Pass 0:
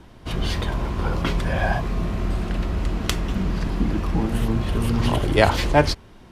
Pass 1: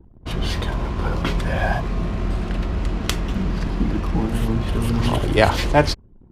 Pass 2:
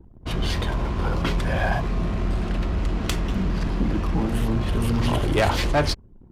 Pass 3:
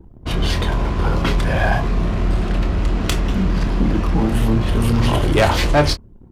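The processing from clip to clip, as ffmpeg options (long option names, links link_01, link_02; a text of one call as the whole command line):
ffmpeg -i in.wav -af "anlmdn=0.158,volume=1dB" out.wav
ffmpeg -i in.wav -af "asoftclip=type=tanh:threshold=-14dB" out.wav
ffmpeg -i in.wav -filter_complex "[0:a]asplit=2[link_01][link_02];[link_02]adelay=27,volume=-9.5dB[link_03];[link_01][link_03]amix=inputs=2:normalize=0,volume=5dB" out.wav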